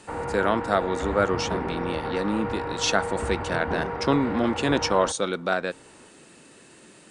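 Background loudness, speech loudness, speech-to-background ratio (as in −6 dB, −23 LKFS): −31.0 LKFS, −26.0 LKFS, 5.0 dB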